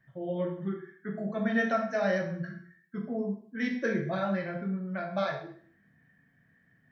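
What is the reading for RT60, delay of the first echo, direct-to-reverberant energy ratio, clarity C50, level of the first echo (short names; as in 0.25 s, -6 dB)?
0.50 s, none, 1.0 dB, 6.5 dB, none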